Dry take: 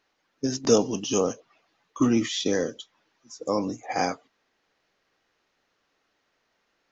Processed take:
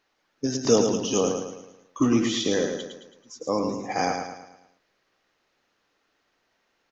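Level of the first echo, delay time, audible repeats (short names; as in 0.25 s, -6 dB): -5.5 dB, 0.109 s, 5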